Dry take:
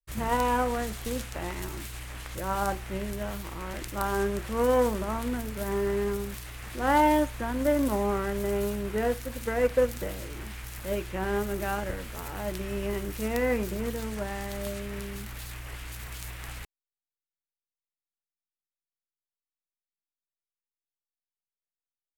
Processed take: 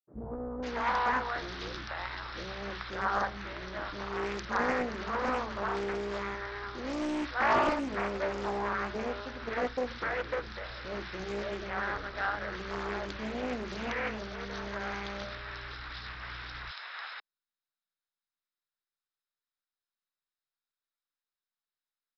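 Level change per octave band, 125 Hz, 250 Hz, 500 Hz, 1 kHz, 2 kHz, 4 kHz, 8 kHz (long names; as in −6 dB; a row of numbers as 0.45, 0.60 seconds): −9.0, −7.0, −6.5, −2.0, +2.0, 0.0, −14.0 decibels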